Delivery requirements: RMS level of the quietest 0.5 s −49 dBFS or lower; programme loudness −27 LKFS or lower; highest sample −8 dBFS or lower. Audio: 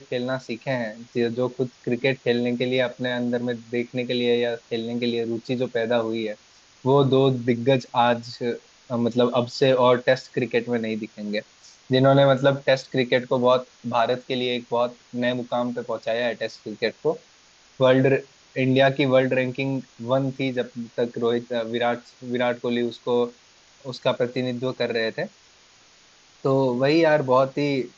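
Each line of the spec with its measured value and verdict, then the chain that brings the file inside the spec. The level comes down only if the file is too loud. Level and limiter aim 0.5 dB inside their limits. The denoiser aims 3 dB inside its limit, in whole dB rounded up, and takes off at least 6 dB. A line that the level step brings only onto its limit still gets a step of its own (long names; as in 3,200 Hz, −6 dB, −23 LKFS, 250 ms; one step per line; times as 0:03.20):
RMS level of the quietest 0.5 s −55 dBFS: in spec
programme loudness −23.5 LKFS: out of spec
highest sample −6.0 dBFS: out of spec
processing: level −4 dB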